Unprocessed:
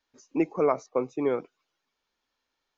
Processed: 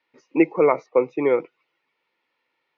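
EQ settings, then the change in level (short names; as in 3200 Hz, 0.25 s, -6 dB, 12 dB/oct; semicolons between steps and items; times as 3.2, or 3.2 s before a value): speaker cabinet 110–4700 Hz, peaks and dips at 150 Hz +6 dB, 340 Hz +8 dB, 500 Hz +9 dB, 920 Hz +8 dB, 1400 Hz +4 dB, 2600 Hz +8 dB; bell 2000 Hz +13 dB 0.4 oct; notch 1600 Hz, Q 8.6; 0.0 dB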